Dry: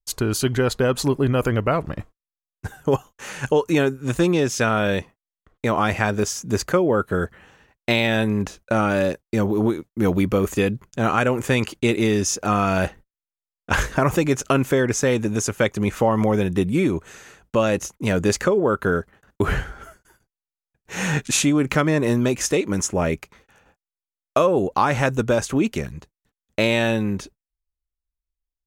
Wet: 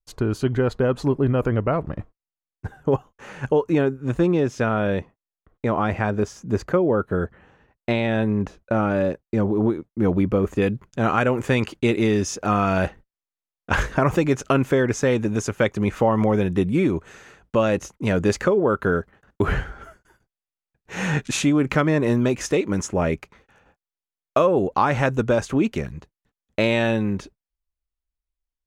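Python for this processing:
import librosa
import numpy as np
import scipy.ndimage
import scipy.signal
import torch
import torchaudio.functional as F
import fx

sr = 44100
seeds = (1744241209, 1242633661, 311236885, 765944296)

y = fx.lowpass(x, sr, hz=fx.steps((0.0, 1100.0), (10.62, 3100.0)), slope=6)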